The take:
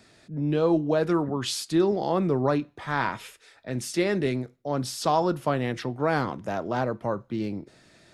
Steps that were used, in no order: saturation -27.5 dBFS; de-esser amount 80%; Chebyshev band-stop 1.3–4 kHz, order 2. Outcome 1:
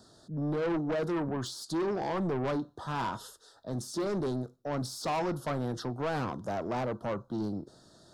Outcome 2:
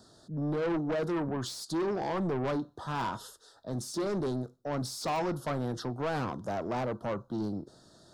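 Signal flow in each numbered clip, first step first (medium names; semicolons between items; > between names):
de-esser > Chebyshev band-stop > saturation; Chebyshev band-stop > saturation > de-esser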